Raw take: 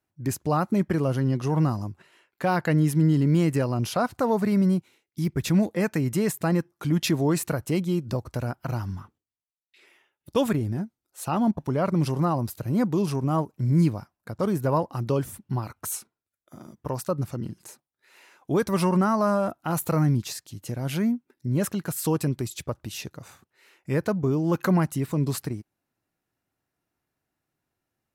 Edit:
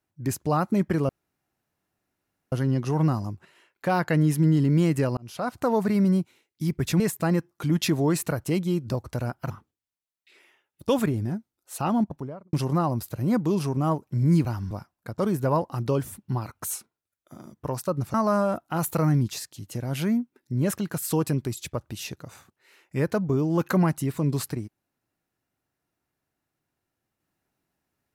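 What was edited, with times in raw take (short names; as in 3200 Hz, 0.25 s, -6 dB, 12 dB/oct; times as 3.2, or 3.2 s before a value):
1.09 insert room tone 1.43 s
3.74–4.21 fade in
5.57–6.21 cut
8.71–8.97 move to 13.92
11.35–12 studio fade out
17.35–19.08 cut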